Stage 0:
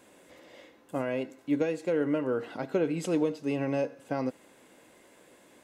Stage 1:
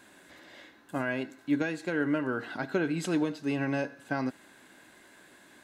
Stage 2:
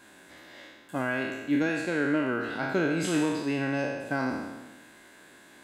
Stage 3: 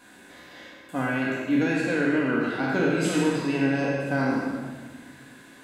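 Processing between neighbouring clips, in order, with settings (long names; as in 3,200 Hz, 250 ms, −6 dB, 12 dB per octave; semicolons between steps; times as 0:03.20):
thirty-one-band graphic EQ 500 Hz −11 dB, 1,600 Hz +10 dB, 4,000 Hz +6 dB; level +1 dB
peak hold with a decay on every bin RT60 1.23 s
rectangular room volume 1,200 cubic metres, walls mixed, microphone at 1.9 metres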